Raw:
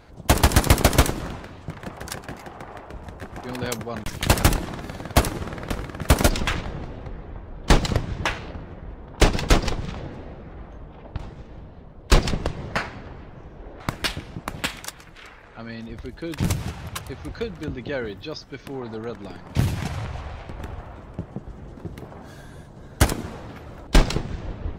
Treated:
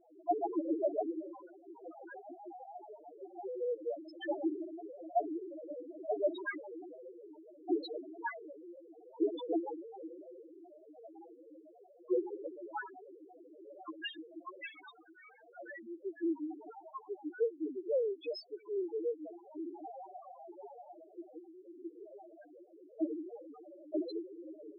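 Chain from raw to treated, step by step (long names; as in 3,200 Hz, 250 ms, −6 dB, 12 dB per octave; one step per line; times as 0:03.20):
Chebyshev band-pass filter 310–8,400 Hz, order 4
spectral peaks only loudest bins 1
level +5 dB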